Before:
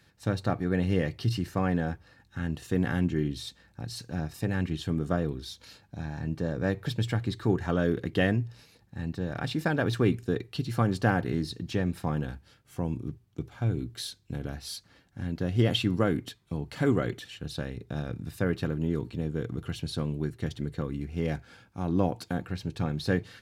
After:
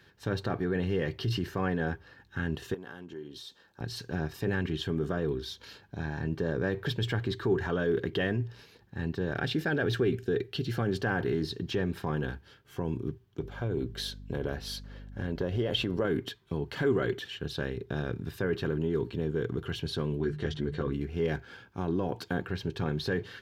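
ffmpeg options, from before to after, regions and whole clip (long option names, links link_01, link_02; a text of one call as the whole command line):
ffmpeg -i in.wav -filter_complex "[0:a]asettb=1/sr,asplit=3[link_01][link_02][link_03];[link_01]atrim=end=2.744[link_04];[link_02]atrim=start=2.74:end=3.81,asetpts=PTS-STARTPTS,afade=type=in:duration=0.004:curve=qsin,afade=type=out:start_time=1.066:duration=0.004:curve=qsin,highpass=frequency=500:poles=1,equalizer=frequency=2100:width_type=o:width=0.77:gain=-8.5,acompressor=threshold=-42dB:ratio=10:attack=3.2:release=140:knee=1:detection=peak[link_05];[link_03]atrim=start=3.806[link_06];[link_04][link_05]acrossfade=duration=0.004:curve1=hsin:curve2=qsin[link_07];[link_07][link_06]acrossfade=duration=0.004:curve1=qsin:curve2=hsin,asettb=1/sr,asplit=3[link_08][link_09][link_10];[link_08]atrim=end=9.344[link_11];[link_09]atrim=start=9.34:end=11.03,asetpts=PTS-STARTPTS,afade=type=in:duration=0.004:curve=qsin,afade=type=out:start_time=1.686:duration=0.004:curve=qsin,equalizer=frequency=1000:width_type=o:width=0.23:gain=-11,bandreject=frequency=1200:width=18[link_12];[link_10]atrim=start=11.026[link_13];[link_11][link_12]acrossfade=duration=0.004:curve1=hsin:curve2=qsin[link_14];[link_14][link_13]acrossfade=duration=0.004:curve1=qsin:curve2=hsin,asettb=1/sr,asplit=3[link_15][link_16][link_17];[link_15]atrim=end=13.404[link_18];[link_16]atrim=start=13.4:end=16.05,asetpts=PTS-STARTPTS,afade=type=in:duration=0.004:curve=qsin,afade=type=out:start_time=2.646:duration=0.004:curve=qsin,equalizer=frequency=550:width=2.6:gain=8.5,aeval=exprs='val(0)+0.00631*(sin(2*PI*50*n/s)+sin(2*PI*2*50*n/s)/2+sin(2*PI*3*50*n/s)/3+sin(2*PI*4*50*n/s)/4+sin(2*PI*5*50*n/s)/5)':channel_layout=same,acompressor=threshold=-27dB:ratio=6:attack=3.2:release=140:knee=1:detection=peak[link_19];[link_17]atrim=start=16.046[link_20];[link_18][link_19]acrossfade=duration=0.004:curve1=hsin:curve2=qsin[link_21];[link_21][link_20]acrossfade=duration=0.004:curve1=qsin:curve2=hsin,asettb=1/sr,asplit=3[link_22][link_23][link_24];[link_22]atrim=end=20.194[link_25];[link_23]atrim=start=20.19:end=20.93,asetpts=PTS-STARTPTS,afade=type=in:duration=0.004:curve=qsin,afade=type=out:start_time=0.736:duration=0.004:curve=qsin,lowpass=7400,bandreject=frequency=50:width_type=h:width=6,bandreject=frequency=100:width_type=h:width=6,bandreject=frequency=150:width_type=h:width=6,bandreject=frequency=200:width_type=h:width=6,asplit=2[link_26][link_27];[link_27]adelay=14,volume=-3.5dB[link_28];[link_26][link_28]amix=inputs=2:normalize=0,atrim=end_sample=32634[link_29];[link_24]atrim=start=20.926[link_30];[link_25][link_29]acrossfade=duration=0.004:curve1=hsin:curve2=qsin[link_31];[link_31][link_30]acrossfade=duration=0.004:curve1=qsin:curve2=hsin,equalizer=frequency=7700:width=2.4:gain=-4.5,alimiter=limit=-23dB:level=0:latency=1:release=12,equalizer=frequency=400:width_type=o:width=0.33:gain=11,equalizer=frequency=1000:width_type=o:width=0.33:gain=5,equalizer=frequency=1600:width_type=o:width=0.33:gain=7,equalizer=frequency=3150:width_type=o:width=0.33:gain=6,equalizer=frequency=10000:width_type=o:width=0.33:gain=-7" out.wav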